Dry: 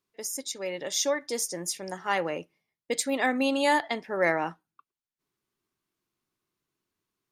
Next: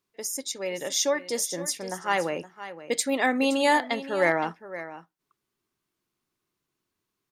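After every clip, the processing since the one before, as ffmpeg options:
ffmpeg -i in.wav -af "aecho=1:1:518:0.2,volume=2dB" out.wav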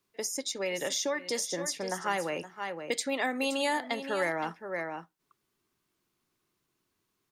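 ffmpeg -i in.wav -filter_complex "[0:a]acrossover=split=350|950|6900[link_01][link_02][link_03][link_04];[link_01]acompressor=threshold=-44dB:ratio=4[link_05];[link_02]acompressor=threshold=-38dB:ratio=4[link_06];[link_03]acompressor=threshold=-36dB:ratio=4[link_07];[link_04]acompressor=threshold=-48dB:ratio=4[link_08];[link_05][link_06][link_07][link_08]amix=inputs=4:normalize=0,volume=3dB" out.wav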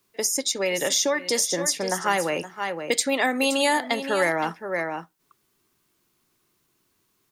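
ffmpeg -i in.wav -af "highshelf=frequency=7500:gain=6,volume=7.5dB" out.wav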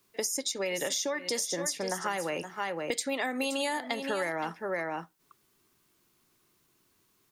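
ffmpeg -i in.wav -af "acompressor=threshold=-30dB:ratio=4" out.wav

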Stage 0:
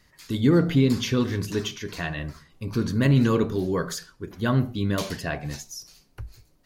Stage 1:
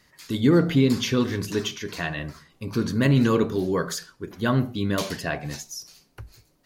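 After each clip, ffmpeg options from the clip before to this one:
ffmpeg -i in.wav -af "lowshelf=frequency=77:gain=-12,volume=2dB" out.wav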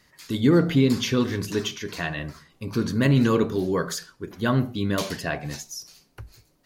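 ffmpeg -i in.wav -af anull out.wav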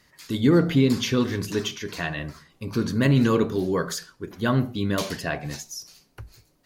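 ffmpeg -i in.wav -ar 48000 -c:a libopus -b:a 96k out.opus

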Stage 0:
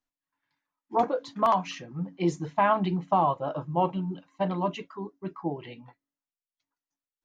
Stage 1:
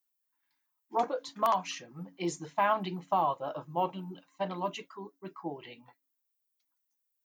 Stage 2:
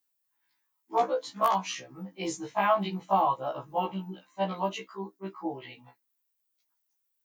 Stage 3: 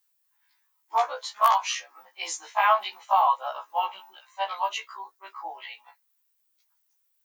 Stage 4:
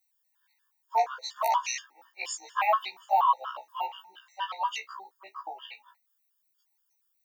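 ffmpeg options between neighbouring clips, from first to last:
ffmpeg -i in.wav -af "aemphasis=mode=production:type=bsi,volume=-4dB" out.wav
ffmpeg -i in.wav -af "afftfilt=real='re*1.73*eq(mod(b,3),0)':imag='im*1.73*eq(mod(b,3),0)':win_size=2048:overlap=0.75,volume=5.5dB" out.wav
ffmpeg -i in.wav -af "highpass=frequency=800:width=0.5412,highpass=frequency=800:width=1.3066,volume=6.5dB" out.wav
ffmpeg -i in.wav -af "afftfilt=real='re*gt(sin(2*PI*4.2*pts/sr)*(1-2*mod(floor(b*sr/1024/920),2)),0)':imag='im*gt(sin(2*PI*4.2*pts/sr)*(1-2*mod(floor(b*sr/1024/920),2)),0)':win_size=1024:overlap=0.75" out.wav

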